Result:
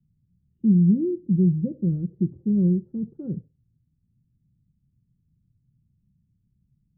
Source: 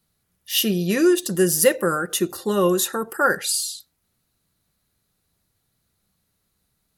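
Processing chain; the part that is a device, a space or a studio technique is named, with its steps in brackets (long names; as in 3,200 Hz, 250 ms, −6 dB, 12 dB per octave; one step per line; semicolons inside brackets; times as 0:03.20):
the neighbour's flat through the wall (low-pass filter 230 Hz 24 dB per octave; parametric band 130 Hz +8 dB 0.76 octaves)
level +5 dB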